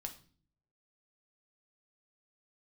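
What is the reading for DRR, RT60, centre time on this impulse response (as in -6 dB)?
3.5 dB, 0.45 s, 9 ms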